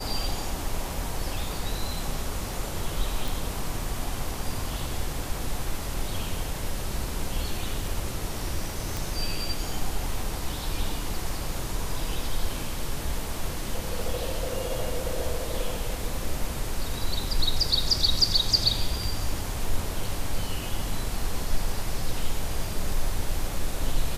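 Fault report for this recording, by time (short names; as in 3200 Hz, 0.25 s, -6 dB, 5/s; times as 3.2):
3.28 pop
8.97 pop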